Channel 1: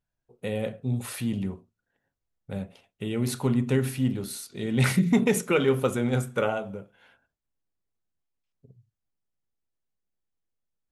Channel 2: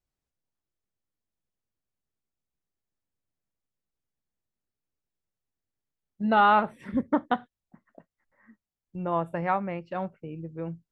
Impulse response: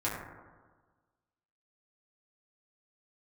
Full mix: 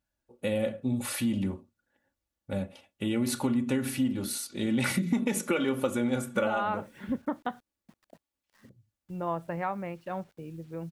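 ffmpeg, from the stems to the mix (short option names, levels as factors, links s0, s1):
-filter_complex "[0:a]highpass=43,aecho=1:1:3.5:0.65,volume=1.19[s0];[1:a]acrusher=bits=9:mix=0:aa=0.000001,alimiter=limit=0.168:level=0:latency=1:release=123,adelay=150,volume=0.668[s1];[s0][s1]amix=inputs=2:normalize=0,acompressor=threshold=0.0631:ratio=6"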